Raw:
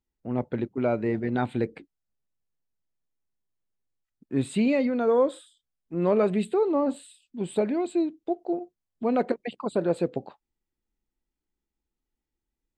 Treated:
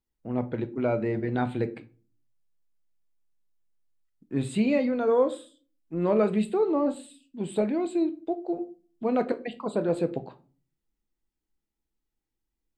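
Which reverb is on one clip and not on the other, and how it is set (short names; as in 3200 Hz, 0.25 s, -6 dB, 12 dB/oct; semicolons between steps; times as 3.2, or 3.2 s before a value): shoebox room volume 240 m³, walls furnished, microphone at 0.6 m; gain -1.5 dB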